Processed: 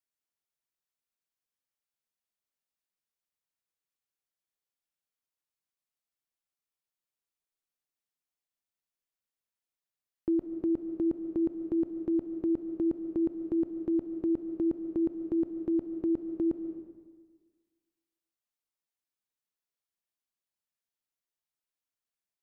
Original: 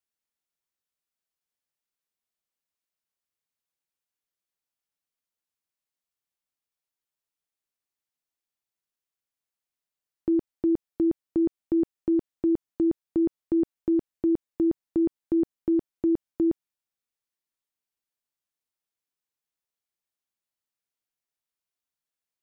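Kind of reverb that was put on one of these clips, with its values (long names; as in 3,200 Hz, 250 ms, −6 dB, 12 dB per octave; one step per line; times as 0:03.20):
comb and all-pass reverb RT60 1.5 s, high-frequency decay 0.75×, pre-delay 100 ms, DRR 8.5 dB
level −4.5 dB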